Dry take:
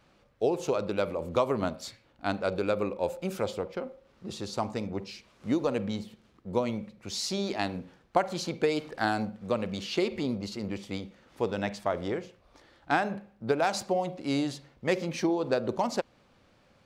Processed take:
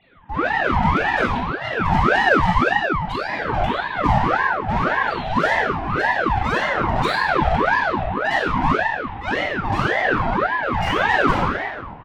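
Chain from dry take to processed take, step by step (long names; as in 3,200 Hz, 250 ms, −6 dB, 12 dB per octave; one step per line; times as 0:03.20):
three sine waves on the formant tracks
in parallel at −3 dB: speech leveller within 5 dB 2 s
on the sum: tilt shelving filter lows +6 dB, about 890 Hz
leveller curve on the samples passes 2
downward compressor 4 to 1, threshold −24 dBFS, peak gain reduction 14.5 dB
volume swells 241 ms
dynamic equaliser 210 Hz, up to +8 dB, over −45 dBFS, Q 1.3
transient designer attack +1 dB, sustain +8 dB
mid-hump overdrive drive 30 dB, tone 2,900 Hz, clips at −12 dBFS
tempo change 1.4×
convolution reverb RT60 1.5 s, pre-delay 16 ms, DRR −5 dB
ring modulator whose carrier an LFO sweeps 850 Hz, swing 60%, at 1.8 Hz
level −6 dB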